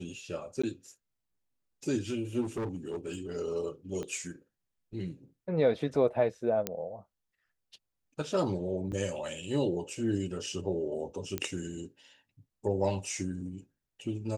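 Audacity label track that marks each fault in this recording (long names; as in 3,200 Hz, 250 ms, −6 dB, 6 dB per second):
0.620000	0.640000	drop-out 15 ms
2.410000	3.180000	clipping −30.5 dBFS
4.030000	4.030000	click −26 dBFS
6.670000	6.670000	click −14 dBFS
8.920000	8.930000	drop-out 6.7 ms
11.380000	11.380000	click −16 dBFS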